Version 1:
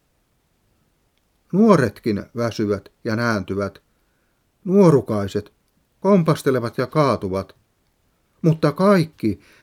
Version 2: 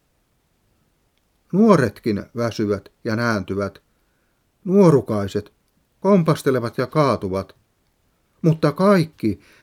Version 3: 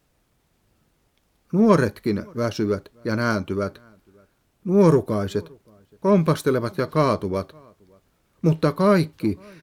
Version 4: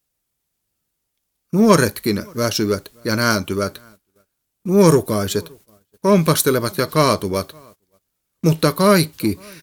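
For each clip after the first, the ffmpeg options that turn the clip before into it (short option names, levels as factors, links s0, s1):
-af anull
-filter_complex "[0:a]asplit=2[s0][s1];[s1]asoftclip=type=tanh:threshold=0.15,volume=0.398[s2];[s0][s2]amix=inputs=2:normalize=0,asplit=2[s3][s4];[s4]adelay=571.4,volume=0.0355,highshelf=f=4000:g=-12.9[s5];[s3][s5]amix=inputs=2:normalize=0,volume=0.631"
-af "agate=range=0.1:threshold=0.00316:ratio=16:detection=peak,crystalizer=i=4.5:c=0,volume=1.41"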